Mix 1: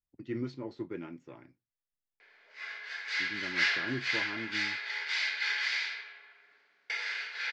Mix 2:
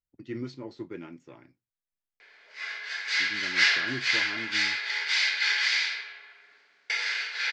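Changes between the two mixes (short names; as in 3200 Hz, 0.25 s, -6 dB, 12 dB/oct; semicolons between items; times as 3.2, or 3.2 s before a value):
background +4.0 dB; master: add high shelf 4400 Hz +9.5 dB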